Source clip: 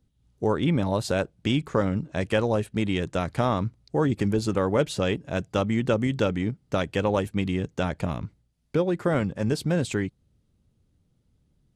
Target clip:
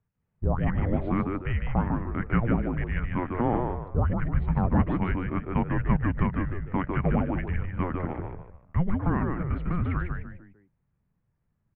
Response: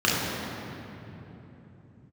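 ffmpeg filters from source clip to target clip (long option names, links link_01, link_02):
-filter_complex "[0:a]asplit=5[link_01][link_02][link_03][link_04][link_05];[link_02]adelay=150,afreqshift=91,volume=-5dB[link_06];[link_03]adelay=300,afreqshift=182,volume=-15.2dB[link_07];[link_04]adelay=450,afreqshift=273,volume=-25.3dB[link_08];[link_05]adelay=600,afreqshift=364,volume=-35.5dB[link_09];[link_01][link_06][link_07][link_08][link_09]amix=inputs=5:normalize=0,highpass=frequency=240:width_type=q:width=0.5412,highpass=frequency=240:width_type=q:width=1.307,lowpass=frequency=2400:width_type=q:width=0.5176,lowpass=frequency=2400:width_type=q:width=0.7071,lowpass=frequency=2400:width_type=q:width=1.932,afreqshift=-360"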